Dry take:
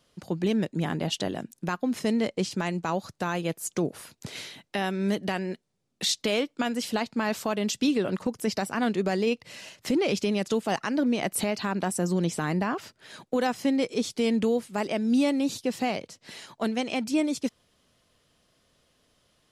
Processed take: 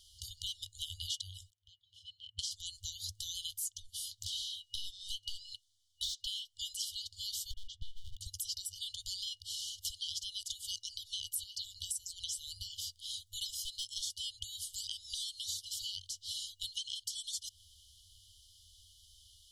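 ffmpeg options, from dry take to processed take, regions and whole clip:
-filter_complex "[0:a]asettb=1/sr,asplit=3[s0][s1][s2];[s0]atrim=end=1.504[s3];[s1]atrim=start=1.5:end=2.39,asetpts=PTS-STARTPTS,afade=t=in:d=0.004:c=qsin,afade=t=out:st=0.886:d=0.004:c=qsin,asplit=3[s4][s5][s6];[s4]bandpass=f=270:t=q:w=8,volume=1[s7];[s5]bandpass=f=2290:t=q:w=8,volume=0.501[s8];[s6]bandpass=f=3010:t=q:w=8,volume=0.355[s9];[s7][s8][s9]amix=inputs=3:normalize=0,tiltshelf=f=1200:g=9[s10];[s2]atrim=start=2.386[s11];[s3][s10]acrossfade=d=0.004:c1=hsin:c2=qsin[s12];[s12][s11]acrossfade=d=0.004:c1=qsin:c2=hsin,asettb=1/sr,asplit=3[s13][s14][s15];[s13]atrim=end=3.804[s16];[s14]atrim=start=3.8:end=6.27,asetpts=PTS-STARTPTS,afade=t=in:d=0.004:c=qsin,afade=t=out:st=2.466:d=0.004:c=qsin,highshelf=f=3400:g=7.5,asplit=2[s17][s18];[s18]highpass=f=720:p=1,volume=8.91,asoftclip=type=tanh:threshold=0.355[s19];[s17][s19]amix=inputs=2:normalize=0,lowpass=f=1000:p=1,volume=0.501,flanger=delay=1.3:depth=3.9:regen=58:speed=1.8:shape=sinusoidal[s20];[s15]atrim=start=6.266[s21];[s16][s20]acrossfade=d=0.004:c1=hsin:c2=qsin[s22];[s22][s21]acrossfade=d=0.004:c1=qsin:c2=hsin,asettb=1/sr,asplit=3[s23][s24][s25];[s23]atrim=end=7.514[s26];[s24]atrim=start=7.51:end=8.21,asetpts=PTS-STARTPTS,afade=t=in:d=0.004:c=qsin,afade=t=out:st=0.696:d=0.004:c=qsin,lowpass=f=1100:t=q:w=1.8,equalizer=f=81:w=0.33:g=-8.5,aeval=exprs='clip(val(0),-1,0.0188)':c=same[s27];[s25]atrim=start=8.206[s28];[s26][s27]acrossfade=d=0.004:c1=hsin:c2=qsin[s29];[s29][s28]acrossfade=d=0.004:c1=qsin:c2=hsin,asettb=1/sr,asplit=3[s30][s31][s32];[s30]atrim=end=13.494[s33];[s31]atrim=start=13.49:end=14.14,asetpts=PTS-STARTPTS,afade=t=in:d=0.004:c=qsin,afade=t=out:st=0.646:d=0.004:c=qsin,highshelf=f=10000:g=4.5,asoftclip=type=hard:threshold=0.106[s34];[s32]atrim=start=14.136[s35];[s33][s34]acrossfade=d=0.004:c1=hsin:c2=qsin[s36];[s36][s35]acrossfade=d=0.004:c1=qsin:c2=hsin,afftfilt=real='re*(1-between(b*sr/4096,100,2900))':imag='im*(1-between(b*sr/4096,100,2900))':win_size=4096:overlap=0.75,acompressor=threshold=0.00447:ratio=6,volume=2.99"

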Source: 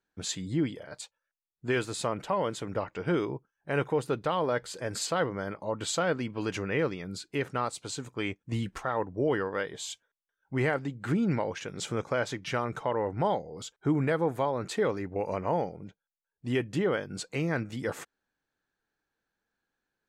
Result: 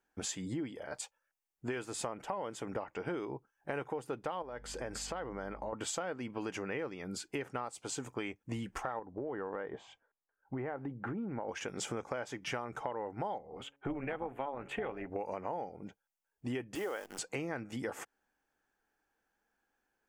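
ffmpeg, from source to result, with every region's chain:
-filter_complex "[0:a]asettb=1/sr,asplit=3[s0][s1][s2];[s0]atrim=end=4.424[s3];[s1]atrim=start=4.42:end=5.73,asetpts=PTS-STARTPTS,afade=t=in:d=0.004:c=qsin,afade=t=out:st=1.306:d=0.004:c=qsin,highshelf=f=8100:g=-9,acompressor=threshold=0.0112:ratio=2.5:attack=3.2:release=140:knee=1:detection=peak,aeval=exprs='val(0)+0.00282*(sin(2*PI*50*n/s)+sin(2*PI*2*50*n/s)/2+sin(2*PI*3*50*n/s)/3+sin(2*PI*4*50*n/s)/4+sin(2*PI*5*50*n/s)/5)':c=same[s4];[s2]atrim=start=5.726[s5];[s3][s4]acrossfade=d=0.004:c1=hsin:c2=qsin[s6];[s6][s5]acrossfade=d=0.004:c1=qsin:c2=hsin,asettb=1/sr,asplit=3[s7][s8][s9];[s7]atrim=end=8.994[s10];[s8]atrim=start=8.99:end=11.49,asetpts=PTS-STARTPTS,afade=t=in:d=0.004:c=qsin,afade=t=out:st=2.496:d=0.004:c=qsin,lowpass=1400,acompressor=threshold=0.0282:ratio=6:attack=3.2:release=140:knee=1:detection=peak[s11];[s9]atrim=start=11.486[s12];[s10][s11]acrossfade=d=0.004:c1=hsin:c2=qsin[s13];[s13][s12]acrossfade=d=0.004:c1=qsin:c2=hsin,asettb=1/sr,asplit=3[s14][s15][s16];[s14]atrim=end=13.384[s17];[s15]atrim=start=13.38:end=15.1,asetpts=PTS-STARTPTS,afade=t=in:d=0.004:c=qsin,afade=t=out:st=1.716:d=0.004:c=qsin,highshelf=f=3800:t=q:w=3:g=-10.5,bandreject=f=140:t=h:w=4,bandreject=f=280:t=h:w=4,bandreject=f=420:t=h:w=4,bandreject=f=560:t=h:w=4,bandreject=f=700:t=h:w=4,tremolo=f=280:d=0.571[s18];[s16]atrim=start=15.096[s19];[s17][s18]acrossfade=d=0.004:c1=hsin:c2=qsin[s20];[s20][s19]acrossfade=d=0.004:c1=qsin:c2=hsin,asettb=1/sr,asplit=3[s21][s22][s23];[s21]atrim=end=16.754[s24];[s22]atrim=start=16.75:end=17.19,asetpts=PTS-STARTPTS,afade=t=in:d=0.004:c=qsin,afade=t=out:st=0.436:d=0.004:c=qsin,highpass=400,acrusher=bits=8:dc=4:mix=0:aa=0.000001[s25];[s23]atrim=start=17.186[s26];[s24][s25]acrossfade=d=0.004:c1=hsin:c2=qsin[s27];[s27][s26]acrossfade=d=0.004:c1=qsin:c2=hsin,equalizer=f=100:t=o:w=0.33:g=-11,equalizer=f=160:t=o:w=0.33:g=-9,equalizer=f=800:t=o:w=0.33:g=6,equalizer=f=4000:t=o:w=0.33:g=-10,acompressor=threshold=0.0126:ratio=6,volume=1.33"

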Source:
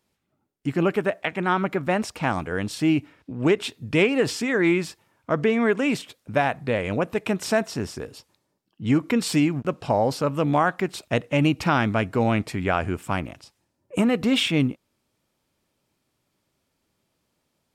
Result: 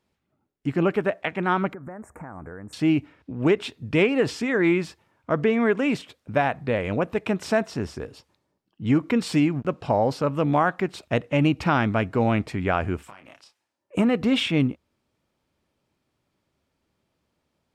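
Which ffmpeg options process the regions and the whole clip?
-filter_complex "[0:a]asettb=1/sr,asplit=3[s0][s1][s2];[s0]atrim=end=1.734[s3];[s1]atrim=start=1.73:end=2.73,asetpts=PTS-STARTPTS,afade=t=in:d=0.004:c=qsin,afade=t=out:st=0.996:d=0.004:c=qsin,acompressor=threshold=0.02:ratio=8:attack=3.2:release=140:knee=1:detection=peak,asuperstop=centerf=3800:order=8:qfactor=0.69[s4];[s2]atrim=start=2.726[s5];[s3][s4]acrossfade=d=0.004:c1=hsin:c2=qsin[s6];[s6][s5]acrossfade=d=0.004:c1=qsin:c2=hsin,asettb=1/sr,asplit=3[s7][s8][s9];[s7]atrim=end=13.034[s10];[s8]atrim=start=13.03:end=13.95,asetpts=PTS-STARTPTS,afade=t=in:d=0.004:c=qsin,afade=t=out:st=0.916:d=0.004:c=qsin,highpass=f=1100:p=1,acompressor=threshold=0.0112:ratio=20:attack=3.2:release=140:knee=1:detection=peak,asplit=2[s11][s12];[s12]adelay=30,volume=0.447[s13];[s11][s13]amix=inputs=2:normalize=0,atrim=end_sample=40572[s14];[s9]atrim=start=13.946[s15];[s10][s14]acrossfade=d=0.004:c1=hsin:c2=qsin[s16];[s16][s15]acrossfade=d=0.004:c1=qsin:c2=hsin,lowpass=f=3400:p=1,equalizer=f=72:t=o:w=0.24:g=6"

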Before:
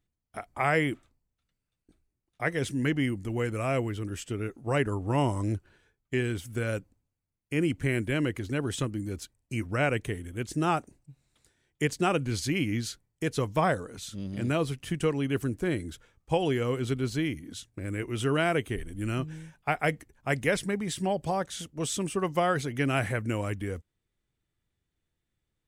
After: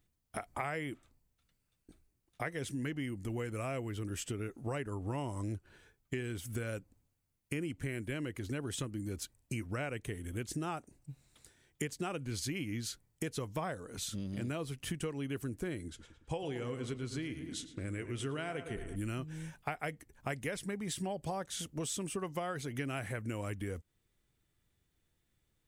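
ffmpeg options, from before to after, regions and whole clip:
-filter_complex "[0:a]asettb=1/sr,asplit=3[s0][s1][s2];[s0]atrim=end=15.884[s3];[s1]atrim=start=15.88:end=18.96,asetpts=PTS-STARTPTS,afade=t=in:d=0.004:c=qsin,afade=t=out:st=3.076:d=0.004:c=qsin,lowpass=f=10000:w=0.5412,lowpass=f=10000:w=1.3066,asplit=2[s4][s5];[s5]adelay=110,lowpass=f=3000:p=1,volume=0.282,asplit=2[s6][s7];[s7]adelay=110,lowpass=f=3000:p=1,volume=0.5,asplit=2[s8][s9];[s9]adelay=110,lowpass=f=3000:p=1,volume=0.5,asplit=2[s10][s11];[s11]adelay=110,lowpass=f=3000:p=1,volume=0.5,asplit=2[s12][s13];[s13]adelay=110,lowpass=f=3000:p=1,volume=0.5[s14];[s4][s6][s8][s10][s12][s14]amix=inputs=6:normalize=0,atrim=end_sample=135828,flanger=delay=3.8:depth=4.3:regen=85:speed=1.1:shape=sinusoidal[s15];[s2]atrim=start=18.956[s16];[s3][s15]acrossfade=d=0.004:c1=hsin:c2=qsin[s17];[s17][s16]acrossfade=d=0.004:c1=qsin:c2=hsin,highshelf=f=7900:g=5.5,acompressor=threshold=0.01:ratio=5,volume=1.5"

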